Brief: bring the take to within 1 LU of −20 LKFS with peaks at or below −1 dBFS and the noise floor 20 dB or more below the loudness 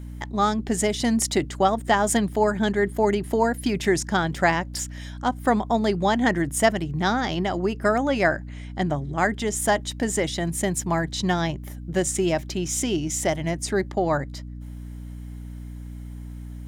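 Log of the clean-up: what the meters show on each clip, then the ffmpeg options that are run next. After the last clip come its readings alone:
mains hum 60 Hz; hum harmonics up to 300 Hz; level of the hum −34 dBFS; integrated loudness −24.0 LKFS; sample peak −7.0 dBFS; target loudness −20.0 LKFS
→ -af "bandreject=frequency=60:width_type=h:width=4,bandreject=frequency=120:width_type=h:width=4,bandreject=frequency=180:width_type=h:width=4,bandreject=frequency=240:width_type=h:width=4,bandreject=frequency=300:width_type=h:width=4"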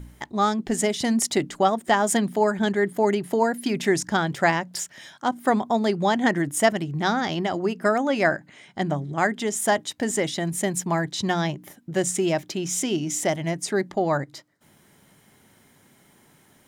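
mains hum none found; integrated loudness −24.0 LKFS; sample peak −7.5 dBFS; target loudness −20.0 LKFS
→ -af "volume=4dB"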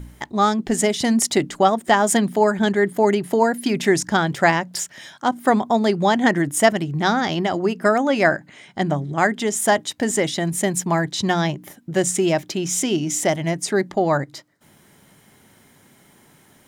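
integrated loudness −20.0 LKFS; sample peak −3.5 dBFS; background noise floor −54 dBFS

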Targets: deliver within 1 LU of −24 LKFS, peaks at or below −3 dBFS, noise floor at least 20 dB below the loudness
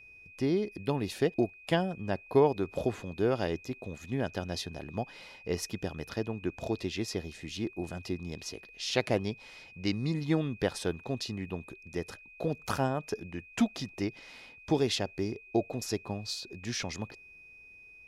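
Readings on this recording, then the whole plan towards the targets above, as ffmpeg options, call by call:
interfering tone 2,500 Hz; level of the tone −51 dBFS; integrated loudness −33.5 LKFS; sample peak −11.0 dBFS; target loudness −24.0 LKFS
→ -af "bandreject=frequency=2500:width=30"
-af "volume=9.5dB,alimiter=limit=-3dB:level=0:latency=1"

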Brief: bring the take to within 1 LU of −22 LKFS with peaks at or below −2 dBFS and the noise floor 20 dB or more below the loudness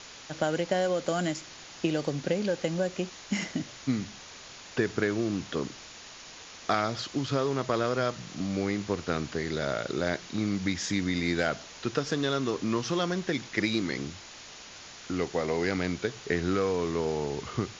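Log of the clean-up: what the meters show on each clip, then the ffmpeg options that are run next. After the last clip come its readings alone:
background noise floor −47 dBFS; target noise floor −51 dBFS; integrated loudness −30.5 LKFS; sample peak −11.0 dBFS; target loudness −22.0 LKFS
→ -af "afftdn=noise_reduction=6:noise_floor=-47"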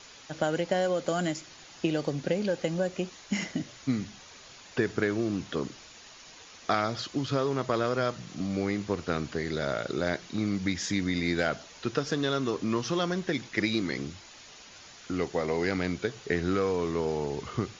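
background noise floor −51 dBFS; integrated loudness −30.5 LKFS; sample peak −11.5 dBFS; target loudness −22.0 LKFS
→ -af "volume=8.5dB"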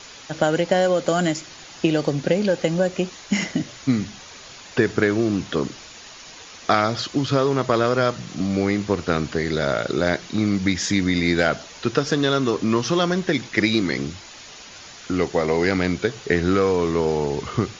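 integrated loudness −22.0 LKFS; sample peak −3.0 dBFS; background noise floor −42 dBFS

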